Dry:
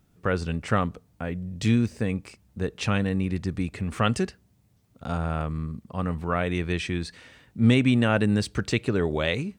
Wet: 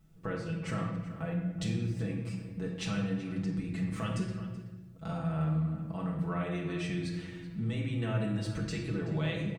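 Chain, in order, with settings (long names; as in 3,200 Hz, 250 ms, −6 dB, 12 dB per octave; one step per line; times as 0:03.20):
low-shelf EQ 160 Hz +7.5 dB
comb filter 6.1 ms, depth 85%
downward compressor, threshold −27 dBFS, peak gain reduction 14 dB
slap from a distant wall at 65 metres, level −13 dB
rectangular room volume 710 cubic metres, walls mixed, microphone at 1.5 metres
level −8 dB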